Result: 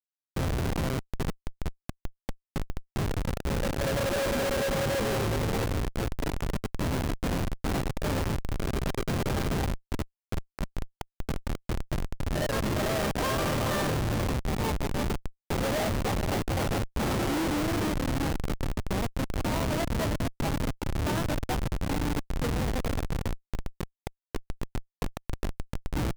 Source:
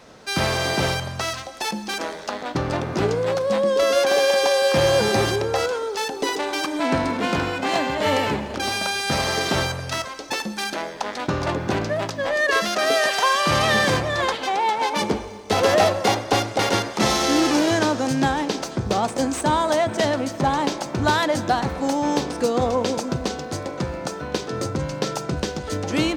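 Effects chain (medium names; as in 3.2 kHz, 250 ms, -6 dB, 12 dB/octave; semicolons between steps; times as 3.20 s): two-band feedback delay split 1.3 kHz, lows 428 ms, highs 224 ms, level -5.5 dB; Schmitt trigger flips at -15.5 dBFS; trim -6.5 dB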